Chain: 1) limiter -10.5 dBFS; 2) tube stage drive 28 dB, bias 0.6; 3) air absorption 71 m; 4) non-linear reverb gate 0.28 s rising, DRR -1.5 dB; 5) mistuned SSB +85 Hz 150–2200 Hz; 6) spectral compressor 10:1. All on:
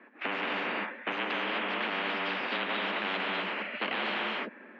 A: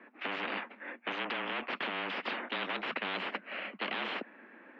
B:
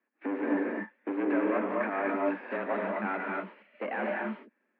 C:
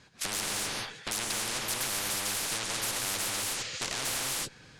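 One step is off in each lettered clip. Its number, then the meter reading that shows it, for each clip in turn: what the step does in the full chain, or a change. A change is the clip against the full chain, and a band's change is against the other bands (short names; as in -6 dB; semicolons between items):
4, momentary loudness spread change +3 LU; 6, 2 kHz band -11.0 dB; 5, 4 kHz band +8.5 dB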